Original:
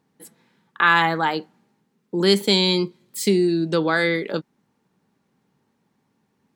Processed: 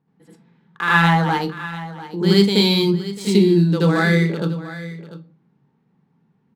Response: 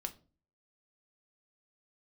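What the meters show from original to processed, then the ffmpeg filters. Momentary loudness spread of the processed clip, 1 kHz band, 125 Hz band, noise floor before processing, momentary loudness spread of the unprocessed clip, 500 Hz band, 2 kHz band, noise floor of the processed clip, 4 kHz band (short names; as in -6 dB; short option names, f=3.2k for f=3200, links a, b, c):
17 LU, +1.0 dB, +11.0 dB, -70 dBFS, 13 LU, +1.5 dB, +1.0 dB, -64 dBFS, +0.5 dB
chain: -filter_complex "[0:a]adynamicsmooth=sensitivity=7.5:basefreq=3.2k,equalizer=f=150:t=o:w=0.53:g=12.5,bandreject=f=600:w=12,aecho=1:1:694:0.178,asplit=2[a][b];[1:a]atrim=start_sample=2205,adelay=78[c];[b][c]afir=irnorm=-1:irlink=0,volume=7dB[d];[a][d]amix=inputs=2:normalize=0,volume=-6dB"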